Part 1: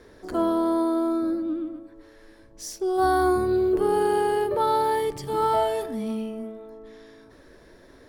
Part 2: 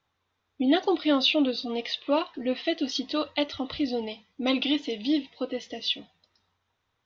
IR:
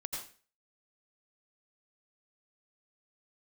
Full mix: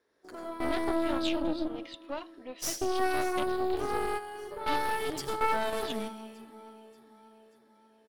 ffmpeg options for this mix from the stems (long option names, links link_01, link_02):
-filter_complex "[0:a]agate=range=-12dB:threshold=-41dB:ratio=16:detection=peak,alimiter=limit=-23dB:level=0:latency=1:release=126,volume=-0.5dB,asplit=3[link_01][link_02][link_03];[link_02]volume=-7.5dB[link_04];[link_03]volume=-17dB[link_05];[1:a]highshelf=frequency=2500:gain=-6.5,volume=-11dB,asplit=3[link_06][link_07][link_08];[link_06]atrim=end=4.09,asetpts=PTS-STARTPTS,afade=type=out:start_time=4.086:duration=0.004:curve=hsin[link_09];[link_07]atrim=start=4.09:end=4.66,asetpts=PTS-STARTPTS,volume=0[link_10];[link_08]atrim=start=4.66,asetpts=PTS-STARTPTS,afade=type=in:duration=0.004:curve=hsin[link_11];[link_09][link_10][link_11]concat=n=3:v=0:a=1,asplit=2[link_12][link_13];[link_13]apad=whole_len=356389[link_14];[link_01][link_14]sidechaingate=range=-21dB:threshold=-56dB:ratio=16:detection=peak[link_15];[2:a]atrim=start_sample=2205[link_16];[link_04][link_16]afir=irnorm=-1:irlink=0[link_17];[link_05]aecho=0:1:584|1168|1752|2336|2920|3504|4088:1|0.51|0.26|0.133|0.0677|0.0345|0.0176[link_18];[link_15][link_12][link_17][link_18]amix=inputs=4:normalize=0,highpass=frequency=520:poles=1,aeval=exprs='0.133*(cos(1*acos(clip(val(0)/0.133,-1,1)))-cos(1*PI/2))+0.0422*(cos(4*acos(clip(val(0)/0.133,-1,1)))-cos(4*PI/2))':channel_layout=same"